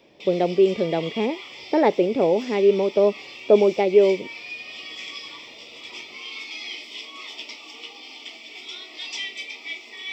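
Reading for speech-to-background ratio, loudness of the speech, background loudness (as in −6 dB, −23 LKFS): 15.0 dB, −20.5 LKFS, −35.5 LKFS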